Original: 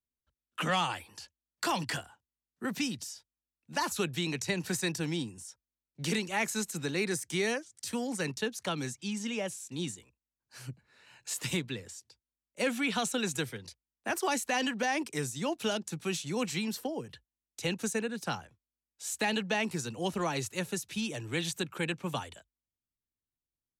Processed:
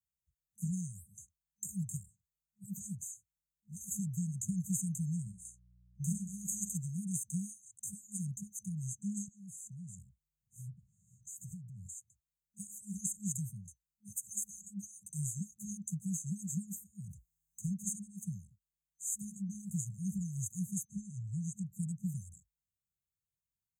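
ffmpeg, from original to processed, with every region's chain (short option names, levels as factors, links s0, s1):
-filter_complex "[0:a]asettb=1/sr,asplit=3[s0][s1][s2];[s0]atrim=end=5.214[s3];[s1]atrim=start=5.21:end=6.78,asetpts=PTS-STARTPTS,afade=t=in:d=0.004:c=qsin,afade=t=out:st=1.566:d=0.004:c=qsin,agate=range=0.355:threshold=0.00447:ratio=16:release=100:detection=peak,aeval=exprs='val(0)+0.000562*(sin(2*PI*60*n/s)+sin(2*PI*2*60*n/s)/2+sin(2*PI*3*60*n/s)/3+sin(2*PI*4*60*n/s)/4+sin(2*PI*5*60*n/s)/5)':c=same,asplit=2[s4][s5];[s5]adelay=49,volume=0.299[s6];[s4][s6]amix=inputs=2:normalize=0,atrim=end_sample=69237[s7];[s2]atrim=start=6.776[s8];[s3][s7]acrossfade=d=0.004:c1=hsin:c2=qsin[s9];[s9][s8]acrossfade=d=0.004:c1=qsin:c2=hsin,asettb=1/sr,asplit=3[s10][s11][s12];[s10]atrim=end=9.284[s13];[s11]atrim=start=9.28:end=11.87,asetpts=PTS-STARTPTS,afade=t=in:d=0.004:c=qsin,afade=t=out:st=2.586:d=0.004:c=qsin,bass=f=250:g=8,treble=f=4000:g=-1,acompressor=threshold=0.00708:ratio=8:attack=3.2:release=140:knee=1:detection=peak[s14];[s12]atrim=start=11.866[s15];[s13][s14]acrossfade=d=0.004:c1=hsin:c2=qsin[s16];[s16][s15]acrossfade=d=0.004:c1=qsin:c2=hsin,asettb=1/sr,asplit=3[s17][s18][s19];[s17]atrim=end=17.044[s20];[s18]atrim=start=17.04:end=17.64,asetpts=PTS-STARTPTS,afade=t=in:d=0.004:c=qsin,afade=t=out:st=0.596:d=0.004:c=qsin,acompressor=threshold=0.00355:ratio=12:attack=3.2:release=140:knee=1:detection=peak,aeval=exprs='0.0141*sin(PI/2*2*val(0)/0.0141)':c=same[s21];[s19]atrim=start=17.636[s22];[s20][s21]acrossfade=d=0.004:c1=hsin:c2=qsin[s23];[s23][s22]acrossfade=d=0.004:c1=qsin:c2=hsin,asettb=1/sr,asplit=3[s24][s25][s26];[s24]atrim=end=20.854[s27];[s25]atrim=start=20.85:end=21.73,asetpts=PTS-STARTPTS,afade=t=in:d=0.004:c=qsin,afade=t=out:st=0.876:d=0.004:c=qsin,agate=range=0.0224:threshold=0.00141:ratio=3:release=100:detection=peak,lowpass=5300[s28];[s26]atrim=start=21.726[s29];[s27][s28]acrossfade=d=0.004:c1=hsin:c2=qsin[s30];[s30][s29]acrossfade=d=0.004:c1=qsin:c2=hsin,highpass=51,afftfilt=real='re*(1-between(b*sr/4096,210,6200))':imag='im*(1-between(b*sr/4096,210,6200))':win_size=4096:overlap=0.75,equalizer=f=11000:t=o:w=0.21:g=-9,volume=1.19"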